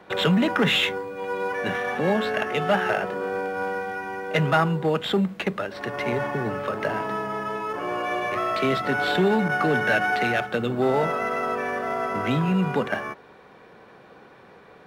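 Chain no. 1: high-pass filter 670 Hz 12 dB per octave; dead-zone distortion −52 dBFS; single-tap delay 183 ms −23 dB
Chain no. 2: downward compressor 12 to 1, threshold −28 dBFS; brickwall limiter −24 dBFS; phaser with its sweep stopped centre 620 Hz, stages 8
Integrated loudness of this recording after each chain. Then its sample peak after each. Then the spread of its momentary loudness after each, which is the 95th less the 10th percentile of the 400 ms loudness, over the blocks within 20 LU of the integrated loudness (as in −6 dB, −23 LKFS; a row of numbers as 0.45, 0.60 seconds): −28.0, −36.0 LKFS; −9.5, −24.0 dBFS; 10, 7 LU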